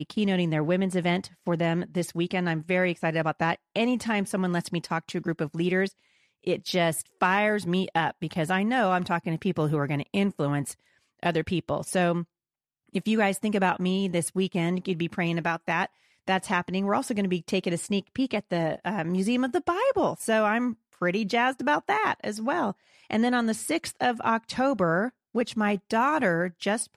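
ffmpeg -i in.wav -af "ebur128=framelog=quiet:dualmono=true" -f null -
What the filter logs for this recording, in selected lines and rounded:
Integrated loudness:
  I:         -23.8 LUFS
  Threshold: -33.9 LUFS
Loudness range:
  LRA:         2.3 LU
  Threshold: -44.1 LUFS
  LRA low:   -25.2 LUFS
  LRA high:  -22.9 LUFS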